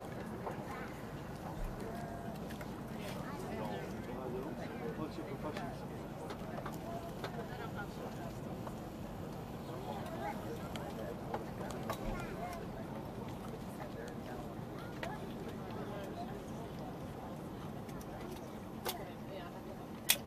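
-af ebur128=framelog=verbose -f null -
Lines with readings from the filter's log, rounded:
Integrated loudness:
  I:         -43.9 LUFS
  Threshold: -53.9 LUFS
Loudness range:
  LRA:         2.2 LU
  Threshold: -64.0 LUFS
  LRA low:   -45.1 LUFS
  LRA high:  -42.9 LUFS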